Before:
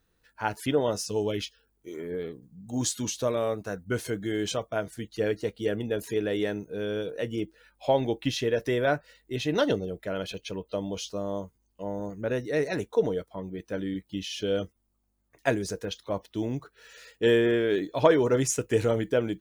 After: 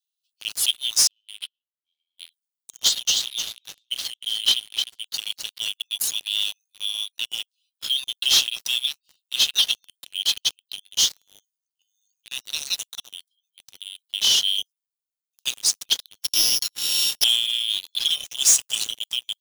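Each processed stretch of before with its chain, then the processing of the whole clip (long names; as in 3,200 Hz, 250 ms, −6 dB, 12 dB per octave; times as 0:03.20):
0:01.07–0:02.18: running median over 9 samples + high-frequency loss of the air 410 metres
0:02.77–0:05.05: three-way crossover with the lows and the highs turned down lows −21 dB, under 580 Hz, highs −24 dB, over 4,300 Hz + transient designer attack +7 dB, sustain +3 dB + repeating echo 304 ms, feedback 28%, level −9 dB
0:16.22–0:17.24: samples sorted by size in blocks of 8 samples + high shelf with overshoot 1,600 Hz +9 dB, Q 3
whole clip: Butterworth high-pass 2,800 Hz 96 dB per octave; leveller curve on the samples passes 5; level +3 dB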